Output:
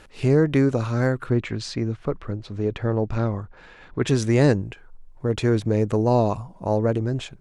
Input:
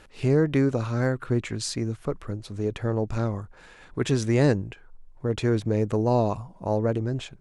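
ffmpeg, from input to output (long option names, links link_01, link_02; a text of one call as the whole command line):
ffmpeg -i in.wav -filter_complex "[0:a]asplit=3[link_01][link_02][link_03];[link_01]afade=type=out:start_time=1.29:duration=0.02[link_04];[link_02]lowpass=4200,afade=type=in:start_time=1.29:duration=0.02,afade=type=out:start_time=4.06:duration=0.02[link_05];[link_03]afade=type=in:start_time=4.06:duration=0.02[link_06];[link_04][link_05][link_06]amix=inputs=3:normalize=0,volume=3dB" out.wav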